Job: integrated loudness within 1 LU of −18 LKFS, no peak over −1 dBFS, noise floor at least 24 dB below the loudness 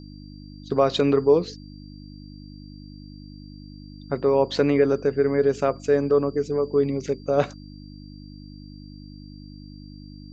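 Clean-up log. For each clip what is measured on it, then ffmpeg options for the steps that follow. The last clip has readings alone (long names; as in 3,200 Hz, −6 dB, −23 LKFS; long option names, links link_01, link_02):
mains hum 50 Hz; hum harmonics up to 300 Hz; level of the hum −39 dBFS; interfering tone 4,700 Hz; level of the tone −53 dBFS; integrated loudness −22.0 LKFS; sample peak −7.5 dBFS; target loudness −18.0 LKFS
→ -af "bandreject=frequency=50:width_type=h:width=4,bandreject=frequency=100:width_type=h:width=4,bandreject=frequency=150:width_type=h:width=4,bandreject=frequency=200:width_type=h:width=4,bandreject=frequency=250:width_type=h:width=4,bandreject=frequency=300:width_type=h:width=4"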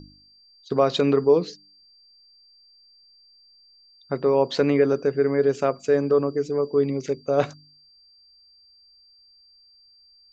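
mains hum none found; interfering tone 4,700 Hz; level of the tone −53 dBFS
→ -af "bandreject=frequency=4700:width=30"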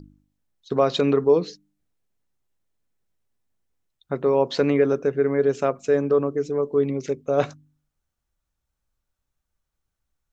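interfering tone none found; integrated loudness −22.0 LKFS; sample peak −7.0 dBFS; target loudness −18.0 LKFS
→ -af "volume=4dB"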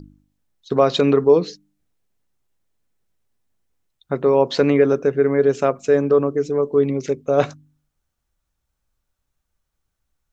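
integrated loudness −18.0 LKFS; sample peak −3.0 dBFS; background noise floor −77 dBFS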